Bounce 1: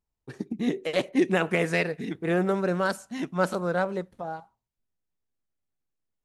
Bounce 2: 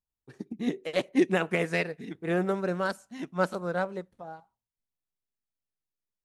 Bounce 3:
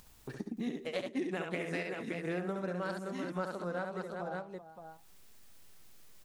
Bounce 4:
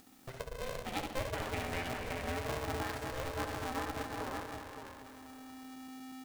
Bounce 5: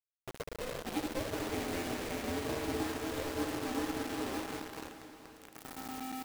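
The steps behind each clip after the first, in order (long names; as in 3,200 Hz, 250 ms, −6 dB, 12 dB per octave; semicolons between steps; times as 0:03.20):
expander for the loud parts 1.5 to 1, over −36 dBFS
upward compression, threshold −38 dBFS; on a send: multi-tap delay 68/193/385/571 ms −5.5/−20/−14/−10 dB; on the sum: downward compressor 4 to 1, threshold −37 dBFS, peak gain reduction 16 dB; level +1.5 dB
feedback delay that plays each chunk backwards 120 ms, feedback 79%, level −8 dB; hum removal 118 Hz, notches 33; ring modulator with a square carrier 260 Hz; level −2 dB
parametric band 320 Hz +13.5 dB 1.1 octaves; bit reduction 6 bits; feedback delay with all-pass diffusion 474 ms, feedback 41%, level −11 dB; level −5 dB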